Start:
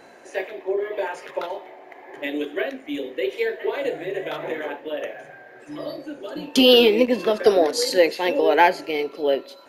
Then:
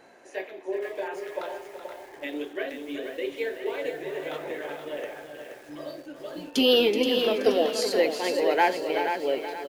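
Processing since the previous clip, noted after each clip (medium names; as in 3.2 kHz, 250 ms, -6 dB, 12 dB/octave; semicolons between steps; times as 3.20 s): on a send: delay 377 ms -9.5 dB; on the sum: bit-crushed delay 476 ms, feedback 35%, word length 7-bit, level -7 dB; trim -6.5 dB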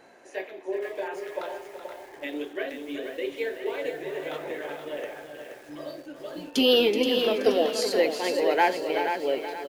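no audible change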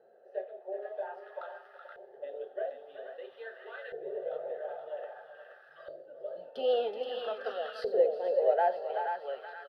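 LFO band-pass saw up 0.51 Hz 400–1500 Hz; static phaser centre 1.5 kHz, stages 8; trim +1.5 dB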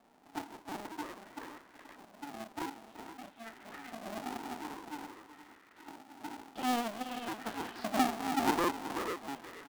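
cycle switcher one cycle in 2, inverted; trim -4 dB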